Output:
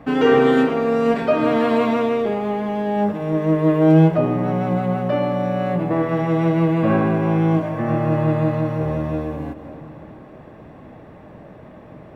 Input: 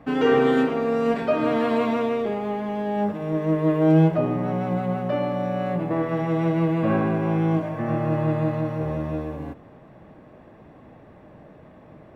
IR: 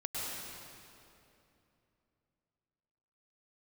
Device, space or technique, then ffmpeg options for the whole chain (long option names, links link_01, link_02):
ducked reverb: -filter_complex "[0:a]asplit=3[link_01][link_02][link_03];[1:a]atrim=start_sample=2205[link_04];[link_02][link_04]afir=irnorm=-1:irlink=0[link_05];[link_03]apad=whole_len=535973[link_06];[link_05][link_06]sidechaincompress=threshold=-39dB:ratio=8:attack=16:release=178,volume=-11dB[link_07];[link_01][link_07]amix=inputs=2:normalize=0,volume=4dB"